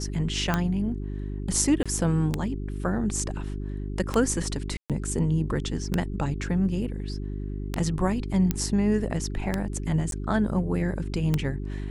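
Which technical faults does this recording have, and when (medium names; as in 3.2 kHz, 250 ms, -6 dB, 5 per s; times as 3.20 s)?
hum 50 Hz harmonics 8 -32 dBFS
tick 33 1/3 rpm -10 dBFS
1.83–1.86 s: dropout 26 ms
4.77–4.90 s: dropout 127 ms
8.51 s: pop -10 dBFS
10.11–10.12 s: dropout 12 ms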